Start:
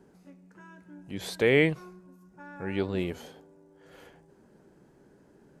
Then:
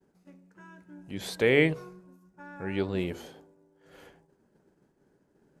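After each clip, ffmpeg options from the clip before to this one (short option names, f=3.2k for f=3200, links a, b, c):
-af "agate=range=-33dB:threshold=-51dB:ratio=3:detection=peak,bandreject=f=68.95:t=h:w=4,bandreject=f=137.9:t=h:w=4,bandreject=f=206.85:t=h:w=4,bandreject=f=275.8:t=h:w=4,bandreject=f=344.75:t=h:w=4,bandreject=f=413.7:t=h:w=4,bandreject=f=482.65:t=h:w=4,bandreject=f=551.6:t=h:w=4,bandreject=f=620.55:t=h:w=4,bandreject=f=689.5:t=h:w=4,bandreject=f=758.45:t=h:w=4,bandreject=f=827.4:t=h:w=4,bandreject=f=896.35:t=h:w=4,bandreject=f=965.3:t=h:w=4,bandreject=f=1.03425k:t=h:w=4,bandreject=f=1.1032k:t=h:w=4,bandreject=f=1.17215k:t=h:w=4,bandreject=f=1.2411k:t=h:w=4"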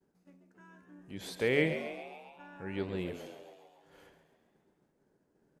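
-filter_complex "[0:a]asplit=8[a][b][c][d][e][f][g][h];[b]adelay=136,afreqshift=75,volume=-10dB[i];[c]adelay=272,afreqshift=150,volume=-14.6dB[j];[d]adelay=408,afreqshift=225,volume=-19.2dB[k];[e]adelay=544,afreqshift=300,volume=-23.7dB[l];[f]adelay=680,afreqshift=375,volume=-28.3dB[m];[g]adelay=816,afreqshift=450,volume=-32.9dB[n];[h]adelay=952,afreqshift=525,volume=-37.5dB[o];[a][i][j][k][l][m][n][o]amix=inputs=8:normalize=0,volume=-6.5dB"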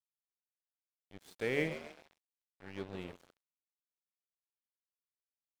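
-af "aeval=exprs='sgn(val(0))*max(abs(val(0))-0.00841,0)':c=same,volume=-4dB"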